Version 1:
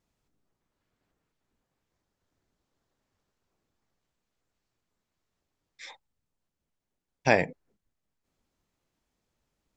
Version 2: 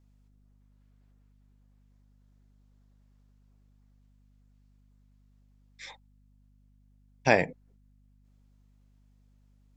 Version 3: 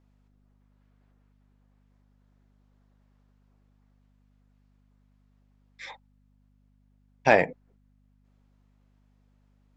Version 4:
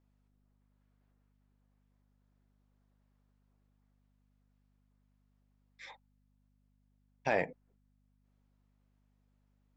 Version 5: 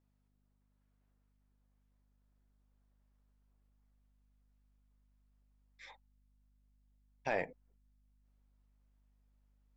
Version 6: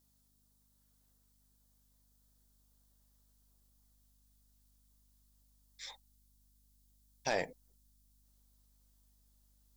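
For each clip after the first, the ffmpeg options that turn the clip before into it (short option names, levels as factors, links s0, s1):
-af "aeval=exprs='val(0)+0.000891*(sin(2*PI*50*n/s)+sin(2*PI*2*50*n/s)/2+sin(2*PI*3*50*n/s)/3+sin(2*PI*4*50*n/s)/4+sin(2*PI*5*50*n/s)/5)':c=same"
-filter_complex "[0:a]asplit=2[s0][s1];[s1]highpass=f=720:p=1,volume=3.55,asoftclip=type=tanh:threshold=0.531[s2];[s0][s2]amix=inputs=2:normalize=0,lowpass=f=1300:p=1,volume=0.501,volume=1.41"
-af "alimiter=limit=0.299:level=0:latency=1:release=30,volume=0.376"
-af "asubboost=boost=4:cutoff=58,volume=0.631"
-af "aexciter=amount=6.7:drive=3.5:freq=3500,volume=1.12"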